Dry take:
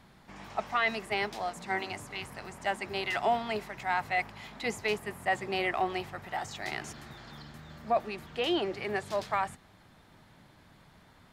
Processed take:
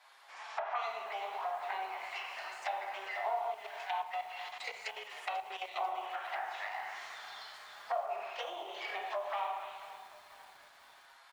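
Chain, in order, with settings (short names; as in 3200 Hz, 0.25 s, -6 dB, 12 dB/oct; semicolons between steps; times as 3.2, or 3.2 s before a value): self-modulated delay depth 0.15 ms; envelope flanger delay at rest 8.7 ms, full sweep at -29 dBFS; reverb RT60 1.1 s, pre-delay 8 ms, DRR -2 dB; compressor 5:1, threshold -29 dBFS, peak gain reduction 8 dB; frequency-shifting echo 81 ms, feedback 62%, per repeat +100 Hz, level -19 dB; 3.5–5.76 level quantiser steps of 11 dB; HPF 730 Hz 24 dB/oct; treble ducked by the level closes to 1400 Hz, closed at -35 dBFS; lo-fi delay 0.492 s, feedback 55%, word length 9-bit, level -14 dB; gain +2 dB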